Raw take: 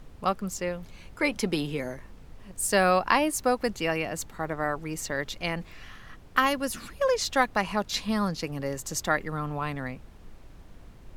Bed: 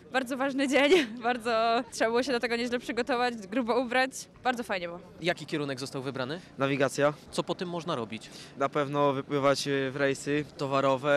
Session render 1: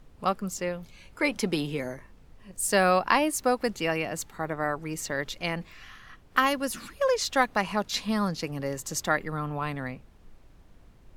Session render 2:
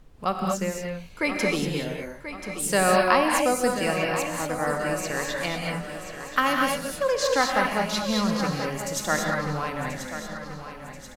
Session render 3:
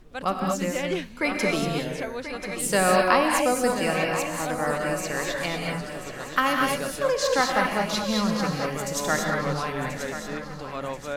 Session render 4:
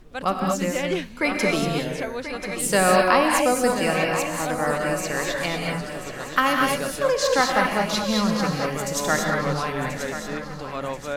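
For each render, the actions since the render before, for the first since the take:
noise print and reduce 6 dB
feedback delay 1034 ms, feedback 50%, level -11 dB; gated-style reverb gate 260 ms rising, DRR 0.5 dB
add bed -7.5 dB
trim +2.5 dB; peak limiter -3 dBFS, peak gain reduction 1.5 dB

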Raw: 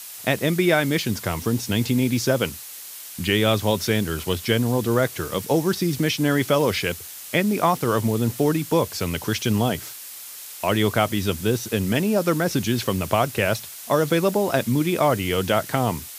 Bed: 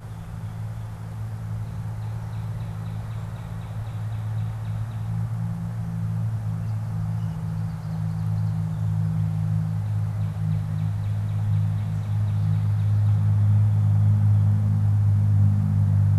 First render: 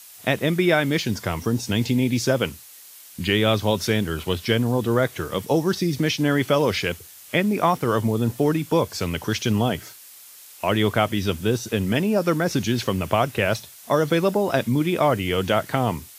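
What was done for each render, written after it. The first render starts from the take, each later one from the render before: noise print and reduce 7 dB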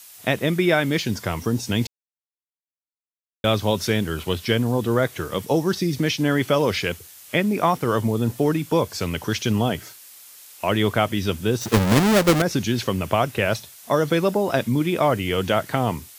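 1.87–3.44 s: mute; 11.61–12.42 s: square wave that keeps the level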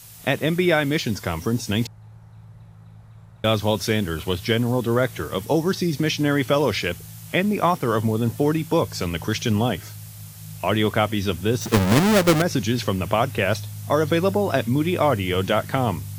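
add bed -14.5 dB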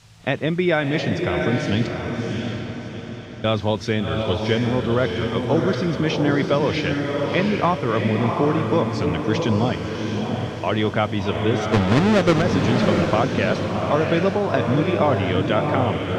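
distance through air 130 m; echo that smears into a reverb 703 ms, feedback 45%, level -3 dB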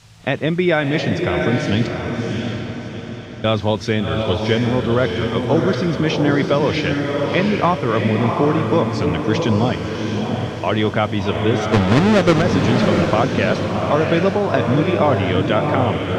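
trim +3 dB; peak limiter -3 dBFS, peak gain reduction 1.5 dB

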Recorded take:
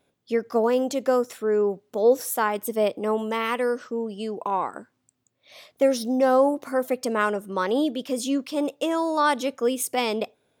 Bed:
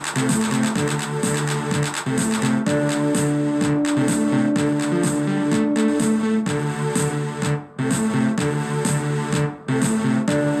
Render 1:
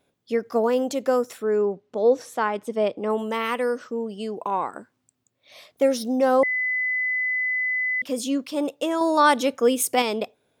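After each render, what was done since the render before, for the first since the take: 1.65–3.10 s: distance through air 95 m; 6.43–8.02 s: bleep 2.01 kHz -21.5 dBFS; 9.01–10.02 s: gain +4 dB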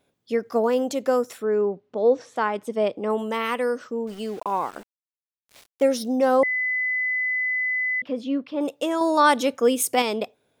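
1.45–2.36 s: distance through air 100 m; 4.07–5.84 s: small samples zeroed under -41.5 dBFS; 8.00–8.61 s: distance through air 340 m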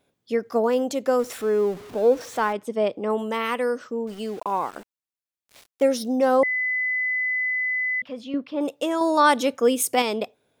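1.19–2.53 s: jump at every zero crossing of -36.5 dBFS; 7.50–8.34 s: peaking EQ 350 Hz -12 dB 1.1 oct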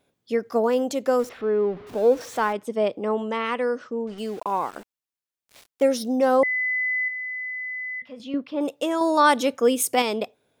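1.29–1.87 s: distance through air 310 m; 3.09–4.18 s: distance through air 85 m; 7.08–8.20 s: feedback comb 120 Hz, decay 0.34 s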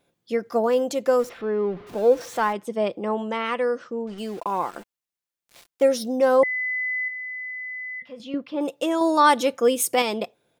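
comb 5.8 ms, depth 31%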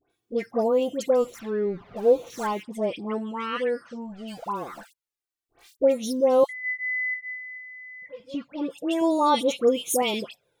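touch-sensitive flanger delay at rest 2.7 ms, full sweep at -18 dBFS; phase dispersion highs, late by 101 ms, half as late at 1.7 kHz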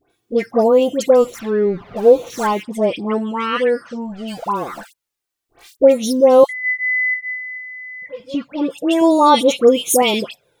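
trim +9.5 dB; peak limiter -1 dBFS, peak gain reduction 1.5 dB

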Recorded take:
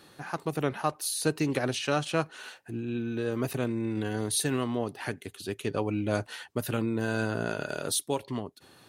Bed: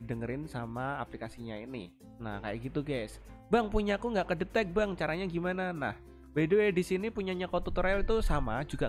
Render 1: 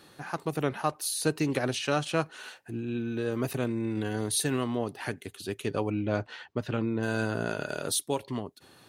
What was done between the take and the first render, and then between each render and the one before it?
5.90–7.03 s: distance through air 150 m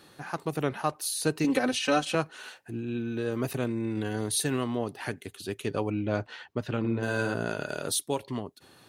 1.44–2.15 s: comb 3.9 ms, depth 97%; 6.79–7.34 s: flutter echo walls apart 8.9 m, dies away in 0.55 s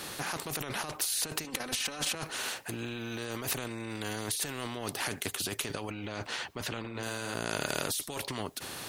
compressor with a negative ratio -35 dBFS, ratio -1; spectrum-flattening compressor 2:1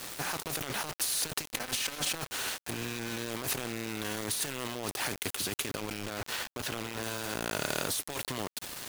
bit crusher 6-bit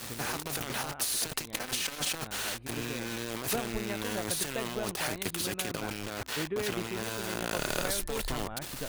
add bed -8 dB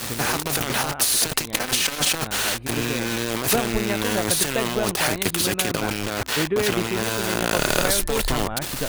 trim +11 dB

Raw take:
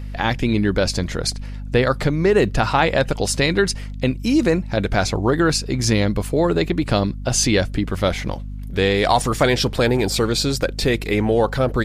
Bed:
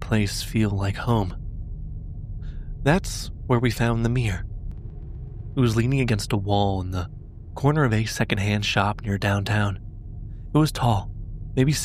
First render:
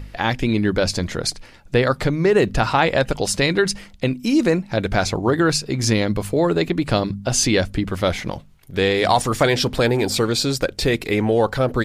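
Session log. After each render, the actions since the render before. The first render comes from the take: de-hum 50 Hz, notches 5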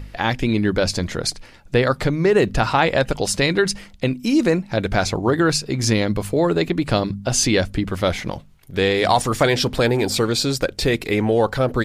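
no audible change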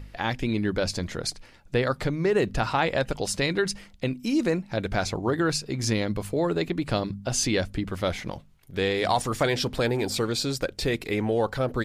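trim -7 dB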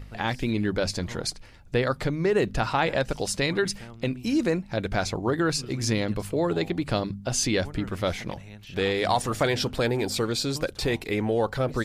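add bed -22 dB

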